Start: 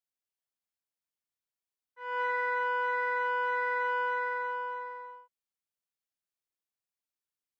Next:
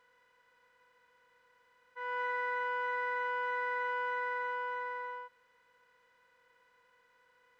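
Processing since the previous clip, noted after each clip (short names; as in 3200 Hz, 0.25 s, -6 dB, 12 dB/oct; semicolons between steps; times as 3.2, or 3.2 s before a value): per-bin compression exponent 0.4; gain -5 dB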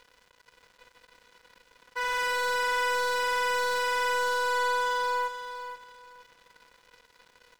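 sample leveller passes 5; on a send: feedback echo 0.476 s, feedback 23%, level -10 dB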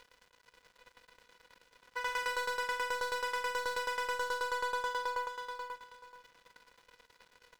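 compressor 4:1, threshold -31 dBFS, peak gain reduction 4.5 dB; tremolo saw down 9.3 Hz, depth 80%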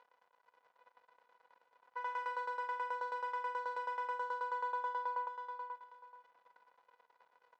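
band-pass 830 Hz, Q 2.2; gain +1 dB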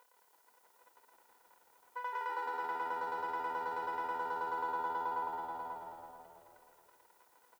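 added noise blue -73 dBFS; on a send: frequency-shifting echo 0.165 s, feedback 58%, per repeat -79 Hz, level -5 dB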